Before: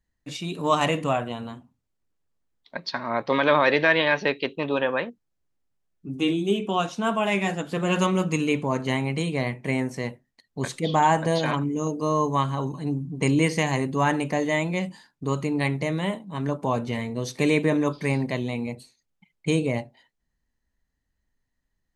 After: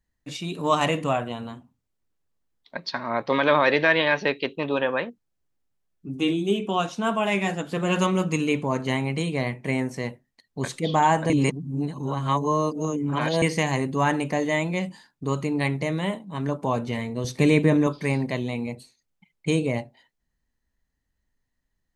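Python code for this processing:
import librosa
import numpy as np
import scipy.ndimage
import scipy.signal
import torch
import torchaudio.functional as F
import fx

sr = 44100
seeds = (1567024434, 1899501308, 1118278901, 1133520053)

y = fx.low_shelf(x, sr, hz=190.0, db=10.0, at=(17.24, 17.87))
y = fx.edit(y, sr, fx.reverse_span(start_s=11.3, length_s=2.12), tone=tone)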